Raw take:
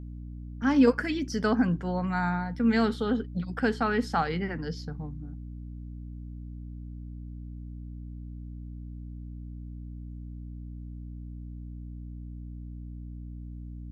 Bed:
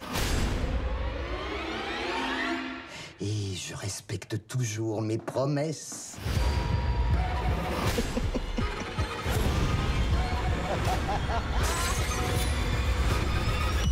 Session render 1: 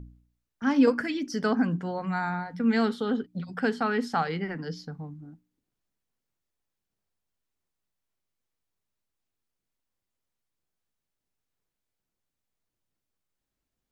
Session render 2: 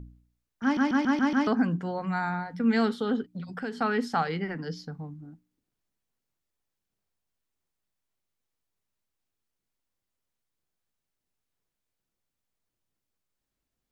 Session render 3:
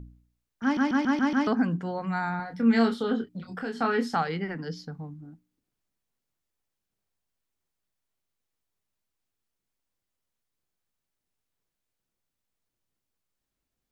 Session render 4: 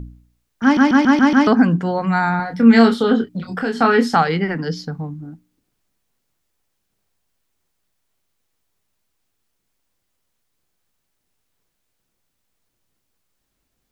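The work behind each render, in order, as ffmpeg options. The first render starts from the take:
-af "bandreject=f=60:t=h:w=4,bandreject=f=120:t=h:w=4,bandreject=f=180:t=h:w=4,bandreject=f=240:t=h:w=4,bandreject=f=300:t=h:w=4"
-filter_complex "[0:a]asettb=1/sr,asplit=3[a][b][c];[a]atrim=end=3.344[d];[b]atrim=start=3.34:end=3.81,asetpts=PTS-STARTPTS,afade=t=in:d=0.004:c=qsin,afade=t=out:st=0.466:d=0.004:c=qsin,acompressor=threshold=-33dB:ratio=2.5:attack=3.2:release=140:knee=1:detection=peak[e];[c]atrim=start=3.806[f];[d][e]acrossfade=d=0.004:c1=hsin:c2=qsin[g];[g][f]acrossfade=d=0.004:c1=qsin:c2=hsin,asplit=7[h][i][j][k][l][m][n];[h]atrim=end=0.772[o];[i]atrim=start=0.628:end=0.772[p];[j]atrim=start=0.628:end=0.772[q];[k]atrim=start=0.628:end=0.772[r];[l]atrim=start=0.628:end=0.772[s];[m]atrim=start=0.628:end=0.772[t];[n]atrim=start=1.468[u];[o][p]acrossfade=d=0.004:c1=hsin:c2=hsin[v];[v][q]acrossfade=d=0.004:c1=hsin:c2=hsin[w];[w][r]acrossfade=d=0.004:c1=hsin:c2=hsin[x];[x][s]acrossfade=d=0.004:c1=hsin:c2=hsin[y];[y][t]acrossfade=d=0.004:c1=hsin:c2=hsin[z];[z][u]acrossfade=d=0.004:c1=hsin:c2=hsin"
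-filter_complex "[0:a]asettb=1/sr,asplit=3[a][b][c];[a]atrim=end=2.374[d];[b]atrim=start=2.37:end=4.17,asetpts=PTS-STARTPTS,afade=t=in:d=0.004:c=qsin,afade=t=out:st=1.796:d=0.004:c=qsin,asplit=2[e][f];[f]adelay=26,volume=-5.5dB[g];[e][g]amix=inputs=2:normalize=0,atrim=end_sample=79380[h];[c]atrim=start=4.166[i];[d][h]acrossfade=d=0.004:c1=hsin:c2=qsin[j];[j][i]acrossfade=d=0.004:c1=qsin:c2=hsin"
-af "volume=11.5dB,alimiter=limit=-1dB:level=0:latency=1"

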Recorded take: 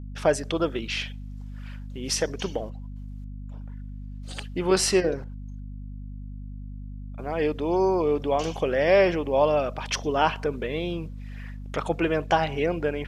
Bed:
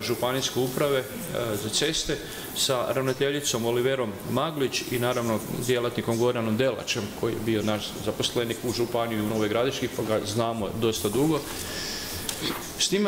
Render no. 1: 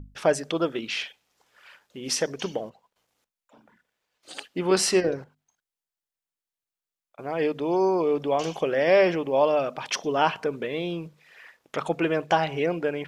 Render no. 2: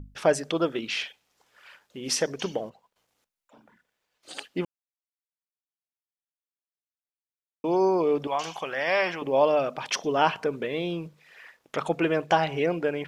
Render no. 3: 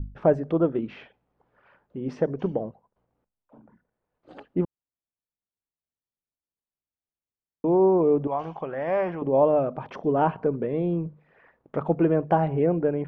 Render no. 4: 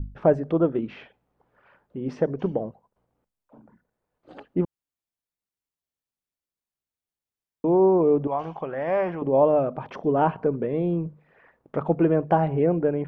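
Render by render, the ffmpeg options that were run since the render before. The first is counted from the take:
-af "bandreject=f=50:t=h:w=6,bandreject=f=100:t=h:w=6,bandreject=f=150:t=h:w=6,bandreject=f=200:t=h:w=6,bandreject=f=250:t=h:w=6"
-filter_complex "[0:a]asettb=1/sr,asplit=3[a][b][c];[a]atrim=end=8.274[d];[b]atrim=start=8.27:end=9.22,asetpts=PTS-STARTPTS,afade=t=in:d=0.004:c=qsin,afade=t=out:st=0.946:d=0.004:c=qsin,lowshelf=f=660:t=q:w=1.5:g=-9.5[e];[c]atrim=start=9.216[f];[d][e]acrossfade=d=0.004:c1=hsin:c2=qsin[g];[g][f]acrossfade=d=0.004:c1=qsin:c2=hsin,asplit=3[h][i][j];[h]atrim=end=4.65,asetpts=PTS-STARTPTS,afade=t=out:st=4.646:d=0.004:c=hsin[k];[i]atrim=start=4.65:end=7.64,asetpts=PTS-STARTPTS,volume=0[l];[j]atrim=start=7.64,asetpts=PTS-STARTPTS,afade=t=in:d=0.004:c=hsin[m];[k][l][m]concat=n=3:v=0:a=1"
-af "lowpass=1k,lowshelf=f=270:g=11"
-af "volume=1dB"

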